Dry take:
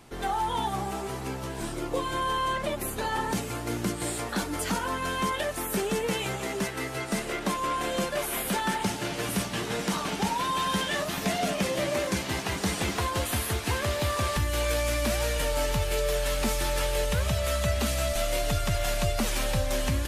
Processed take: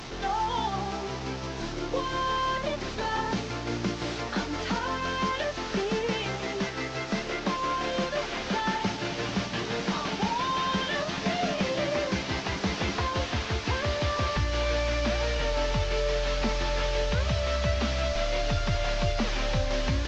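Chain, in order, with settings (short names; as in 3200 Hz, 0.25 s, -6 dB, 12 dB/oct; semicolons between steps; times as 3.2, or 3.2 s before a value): delta modulation 32 kbps, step -33.5 dBFS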